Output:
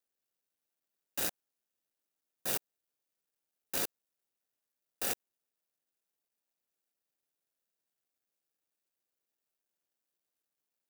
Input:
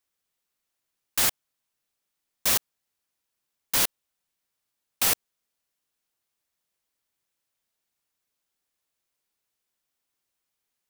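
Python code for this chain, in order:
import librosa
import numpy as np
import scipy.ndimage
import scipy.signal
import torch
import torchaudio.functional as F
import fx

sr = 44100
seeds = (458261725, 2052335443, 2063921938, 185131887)

y = scipy.ndimage.median_filter(x, 41, mode='constant')
y = fx.riaa(y, sr, side='recording')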